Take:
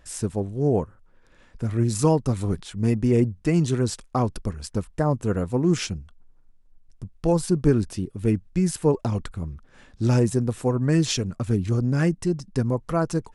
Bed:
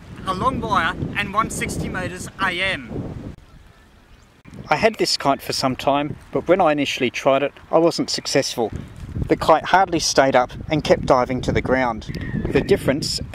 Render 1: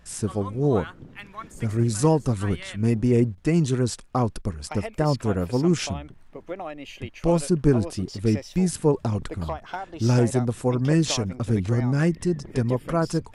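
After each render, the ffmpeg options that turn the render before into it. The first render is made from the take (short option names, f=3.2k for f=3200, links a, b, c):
-filter_complex "[1:a]volume=-18.5dB[a];[0:a][a]amix=inputs=2:normalize=0"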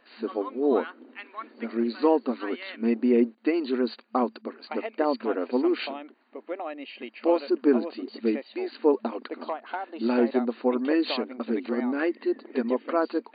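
-af "bandreject=f=3.4k:w=8.5,afftfilt=real='re*between(b*sr/4096,220,4700)':imag='im*between(b*sr/4096,220,4700)':win_size=4096:overlap=0.75"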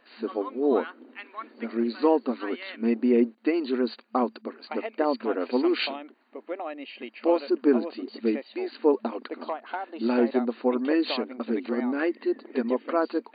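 -filter_complex "[0:a]asettb=1/sr,asplit=3[a][b][c];[a]atrim=end=5.404[d];[b]atrim=start=5.4:end=5.96,asetpts=PTS-STARTPTS,afade=t=in:d=0.004:c=qsin,afade=t=out:st=0.556:d=0.004:c=qsin,highshelf=f=2.2k:g=9[e];[c]atrim=start=5.956[f];[d][e]acrossfade=d=0.004:c1=hsin:c2=qsin[g];[g][f]acrossfade=d=0.004:c1=qsin:c2=hsin"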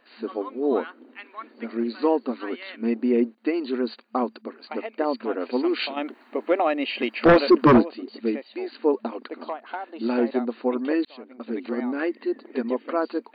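-filter_complex "[0:a]asplit=3[a][b][c];[a]afade=t=out:st=5.96:d=0.02[d];[b]aeval=exprs='0.355*sin(PI/2*2.82*val(0)/0.355)':c=same,afade=t=in:st=5.96:d=0.02,afade=t=out:st=7.81:d=0.02[e];[c]afade=t=in:st=7.81:d=0.02[f];[d][e][f]amix=inputs=3:normalize=0,asplit=2[g][h];[g]atrim=end=11.05,asetpts=PTS-STARTPTS,afade=t=out:st=11.046:d=0.004:c=hsin[i];[h]atrim=start=11.05,asetpts=PTS-STARTPTS,afade=t=in:d=0.62[j];[i][j]concat=n=2:v=0:a=1"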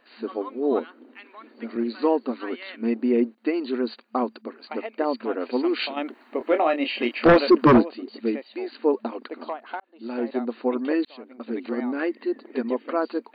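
-filter_complex "[0:a]asettb=1/sr,asplit=3[a][b][c];[a]atrim=end=0.794[d];[b]atrim=start=0.79:end=1.76,asetpts=PTS-STARTPTS,afade=t=in:d=0.004:c=qsin,afade=t=out:st=0.966:d=0.004:c=qsin,acrossover=split=480|3000[e][f][g];[f]acompressor=threshold=-41dB:ratio=6:attack=3.2:release=140:knee=2.83:detection=peak[h];[e][h][g]amix=inputs=3:normalize=0[i];[c]atrim=start=1.756[j];[d][i]acrossfade=d=0.004:c1=hsin:c2=qsin[k];[k][j]acrossfade=d=0.004:c1=qsin:c2=hsin,asettb=1/sr,asplit=3[l][m][n];[l]atrim=end=6.384[o];[m]atrim=start=6.38:end=7.28,asetpts=PTS-STARTPTS,afade=t=in:d=0.004:c=qsin,afade=t=out:st=0.896:d=0.004:c=qsin,asplit=2[p][q];[q]adelay=25,volume=-7dB[r];[p][r]amix=inputs=2:normalize=0,atrim=end_sample=39690[s];[n]atrim=start=7.276[t];[o][s]acrossfade=d=0.004:c1=hsin:c2=qsin[u];[u][t]acrossfade=d=0.004:c1=qsin:c2=hsin,asplit=2[v][w];[v]atrim=end=9.8,asetpts=PTS-STARTPTS,afade=t=out:st=9.796:d=0.004:c=hsin[x];[w]atrim=start=9.8,asetpts=PTS-STARTPTS,afade=t=in:d=0.74[y];[x][y]concat=n=2:v=0:a=1"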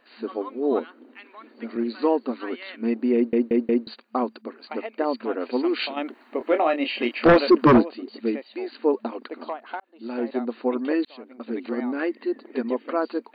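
-filter_complex "[0:a]asplit=5[a][b][c][d][e];[a]atrim=end=3.332[f];[b]atrim=start=3.148:end=3.332[g];[c]atrim=start=3.148:end=3.332[h];[d]atrim=start=3.148:end=3.332[i];[e]atrim=start=3.868[j];[f][g]acrossfade=d=0.004:c1=hsin:c2=hsin[k];[k][h]acrossfade=d=0.004:c1=hsin:c2=hsin[l];[l][i]acrossfade=d=0.004:c1=hsin:c2=hsin[m];[m][j]acrossfade=d=0.004:c1=hsin:c2=hsin"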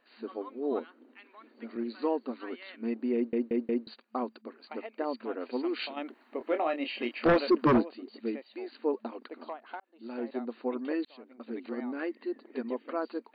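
-af "volume=-8.5dB"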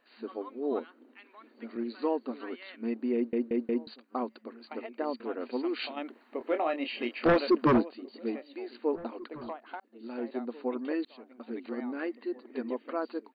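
-filter_complex "[0:a]asplit=2[a][b];[b]adelay=1691,volume=-20dB,highshelf=f=4k:g=-38[c];[a][c]amix=inputs=2:normalize=0"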